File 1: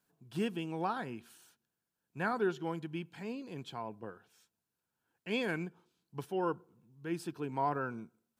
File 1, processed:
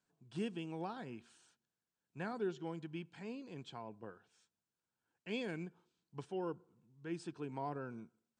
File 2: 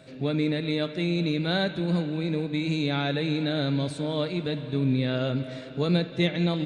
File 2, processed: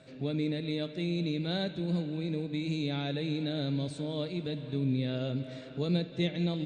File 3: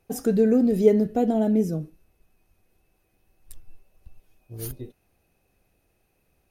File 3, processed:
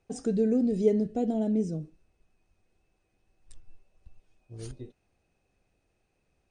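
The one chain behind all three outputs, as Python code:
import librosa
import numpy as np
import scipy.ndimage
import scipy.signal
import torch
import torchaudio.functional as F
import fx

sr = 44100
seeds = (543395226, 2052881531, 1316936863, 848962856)

y = scipy.signal.sosfilt(scipy.signal.butter(12, 9000.0, 'lowpass', fs=sr, output='sos'), x)
y = fx.dynamic_eq(y, sr, hz=1300.0, q=0.82, threshold_db=-44.0, ratio=4.0, max_db=-8)
y = y * 10.0 ** (-5.0 / 20.0)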